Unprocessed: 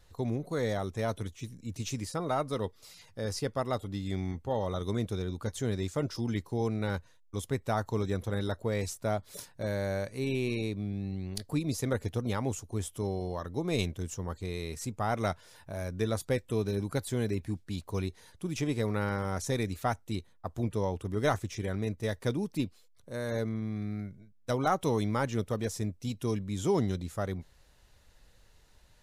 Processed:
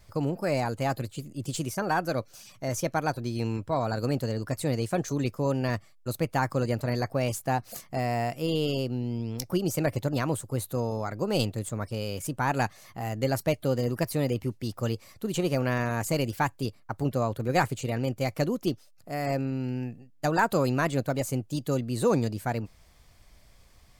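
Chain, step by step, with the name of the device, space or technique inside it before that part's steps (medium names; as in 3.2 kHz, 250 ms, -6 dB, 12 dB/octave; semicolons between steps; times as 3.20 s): nightcore (tape speed +21%); trim +4 dB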